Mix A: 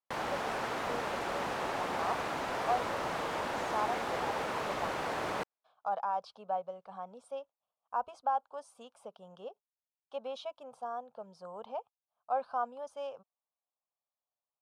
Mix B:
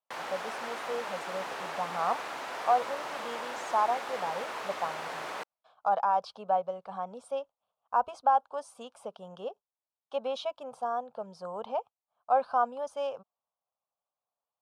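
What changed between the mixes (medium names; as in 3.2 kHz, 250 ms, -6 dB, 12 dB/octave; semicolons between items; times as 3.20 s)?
speech +7.0 dB; background: add high-pass 760 Hz 6 dB/octave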